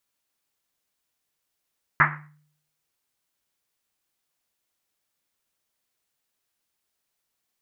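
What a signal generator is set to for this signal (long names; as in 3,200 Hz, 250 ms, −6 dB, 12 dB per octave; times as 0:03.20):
drum after Risset, pitch 150 Hz, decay 0.68 s, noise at 1,500 Hz, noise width 1,100 Hz, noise 70%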